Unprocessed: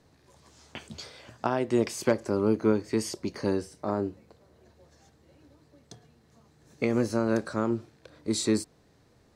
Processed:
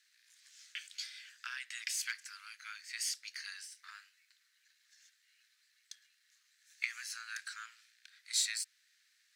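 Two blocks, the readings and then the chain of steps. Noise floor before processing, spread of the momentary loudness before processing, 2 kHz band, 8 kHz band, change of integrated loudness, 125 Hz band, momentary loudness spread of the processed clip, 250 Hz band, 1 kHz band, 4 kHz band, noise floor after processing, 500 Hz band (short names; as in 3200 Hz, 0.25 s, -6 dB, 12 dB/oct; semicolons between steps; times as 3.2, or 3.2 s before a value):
-63 dBFS, 17 LU, -1.5 dB, +0.5 dB, -11.0 dB, under -40 dB, 21 LU, under -40 dB, -19.0 dB, +0.5 dB, -74 dBFS, under -40 dB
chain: half-wave gain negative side -3 dB; steep high-pass 1600 Hz 48 dB/oct; gain +2 dB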